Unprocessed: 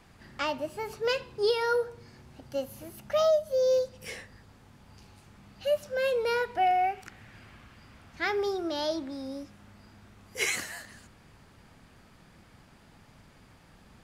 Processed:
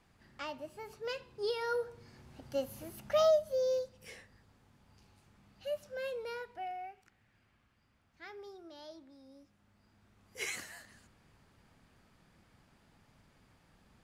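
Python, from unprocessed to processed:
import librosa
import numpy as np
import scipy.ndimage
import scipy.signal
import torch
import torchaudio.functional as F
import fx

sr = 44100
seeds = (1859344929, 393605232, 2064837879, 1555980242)

y = fx.gain(x, sr, db=fx.line((1.19, -11.0), (2.49, -2.5), (3.29, -2.5), (3.94, -10.5), (5.96, -10.5), (7.05, -20.0), (9.26, -20.0), (10.48, -9.5)))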